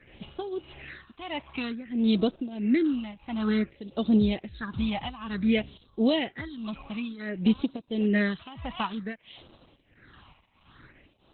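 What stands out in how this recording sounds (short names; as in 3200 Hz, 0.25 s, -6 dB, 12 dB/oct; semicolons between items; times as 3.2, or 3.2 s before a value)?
phasing stages 6, 0.55 Hz, lowest notch 420–1900 Hz; tremolo triangle 1.5 Hz, depth 90%; Opus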